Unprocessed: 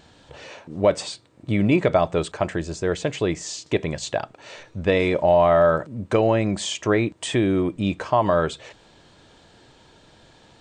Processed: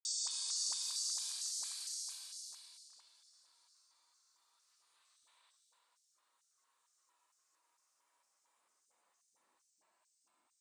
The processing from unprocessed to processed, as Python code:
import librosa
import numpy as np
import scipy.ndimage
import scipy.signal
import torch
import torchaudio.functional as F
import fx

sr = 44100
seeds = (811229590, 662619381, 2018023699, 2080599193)

y = scipy.signal.lfilter([1.0, -0.8], [1.0], x)
y = fx.paulstretch(y, sr, seeds[0], factor=30.0, window_s=0.05, from_s=1.08)
y = fx.filter_lfo_highpass(y, sr, shape='square', hz=2.2, low_hz=990.0, high_hz=5800.0, q=3.5)
y = fx.dispersion(y, sr, late='highs', ms=51.0, hz=480.0)
y = fx.echo_pitch(y, sr, ms=262, semitones=2, count=3, db_per_echo=-6.0)
y = F.gain(torch.from_numpy(y), -8.0).numpy()